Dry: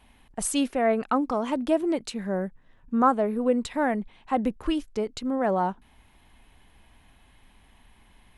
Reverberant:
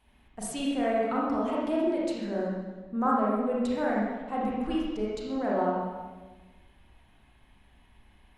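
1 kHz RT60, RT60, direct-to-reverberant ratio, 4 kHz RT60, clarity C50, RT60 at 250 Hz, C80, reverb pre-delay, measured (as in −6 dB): 1.2 s, 1.3 s, −5.5 dB, 1.1 s, −1.5 dB, 1.6 s, 1.5 dB, 29 ms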